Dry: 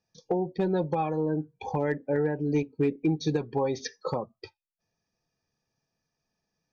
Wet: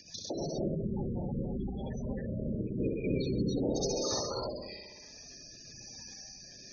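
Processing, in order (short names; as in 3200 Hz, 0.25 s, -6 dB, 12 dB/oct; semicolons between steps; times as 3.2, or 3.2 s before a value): bell 6000 Hz +13 dB 2.4 oct; whisperiser; upward compressor, threshold -28 dBFS; limiter -23 dBFS, peak gain reduction 11.5 dB; spectral gain 0.39–2.6, 250–3000 Hz -10 dB; flutter echo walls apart 10.9 m, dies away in 1.2 s; rotary speaker horn 6.3 Hz, later 1 Hz, at 0.6; non-linear reverb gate 0.32 s rising, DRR -2 dB; spectral gate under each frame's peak -15 dB strong; gain -3 dB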